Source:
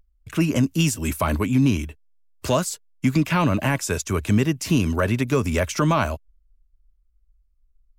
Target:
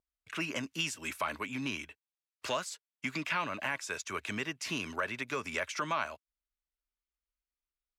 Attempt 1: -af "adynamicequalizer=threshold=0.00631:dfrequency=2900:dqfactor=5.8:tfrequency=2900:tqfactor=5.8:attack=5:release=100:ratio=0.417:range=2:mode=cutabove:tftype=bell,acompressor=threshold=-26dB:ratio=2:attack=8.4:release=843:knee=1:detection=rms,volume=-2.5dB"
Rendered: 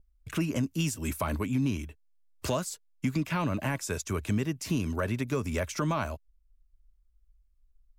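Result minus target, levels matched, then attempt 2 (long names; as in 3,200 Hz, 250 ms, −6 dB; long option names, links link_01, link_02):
2,000 Hz band −8.0 dB
-af "adynamicequalizer=threshold=0.00631:dfrequency=2900:dqfactor=5.8:tfrequency=2900:tqfactor=5.8:attack=5:release=100:ratio=0.417:range=2:mode=cutabove:tftype=bell,bandpass=frequency=2200:width_type=q:width=0.74:csg=0,acompressor=threshold=-26dB:ratio=2:attack=8.4:release=843:knee=1:detection=rms,volume=-2.5dB"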